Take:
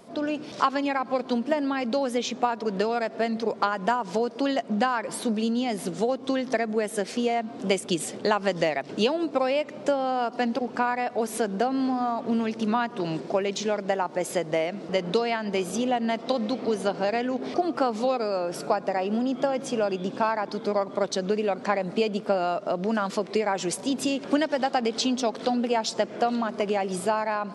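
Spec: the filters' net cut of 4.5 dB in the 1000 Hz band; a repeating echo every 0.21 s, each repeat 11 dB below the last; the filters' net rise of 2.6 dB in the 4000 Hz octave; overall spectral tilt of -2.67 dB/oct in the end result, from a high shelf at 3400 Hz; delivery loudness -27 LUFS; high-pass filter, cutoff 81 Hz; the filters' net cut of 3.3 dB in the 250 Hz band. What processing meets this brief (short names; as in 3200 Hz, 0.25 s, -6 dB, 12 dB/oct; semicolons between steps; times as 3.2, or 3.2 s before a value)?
HPF 81 Hz; bell 250 Hz -3.5 dB; bell 1000 Hz -6 dB; high shelf 3400 Hz -6 dB; bell 4000 Hz +8 dB; feedback echo 0.21 s, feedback 28%, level -11 dB; gain +1.5 dB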